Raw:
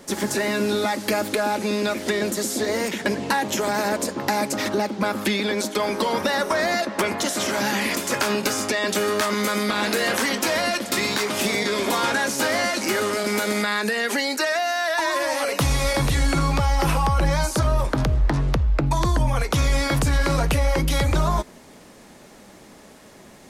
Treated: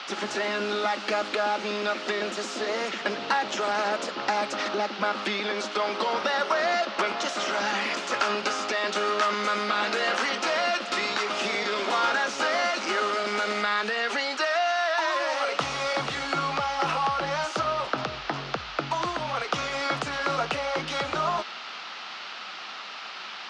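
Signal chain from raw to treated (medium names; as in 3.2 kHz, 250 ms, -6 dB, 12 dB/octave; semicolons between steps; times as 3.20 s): band noise 720–4800 Hz -36 dBFS; cabinet simulation 260–6100 Hz, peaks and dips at 280 Hz -4 dB, 730 Hz +5 dB, 1.3 kHz +9 dB, 2.8 kHz +4 dB; trim -5.5 dB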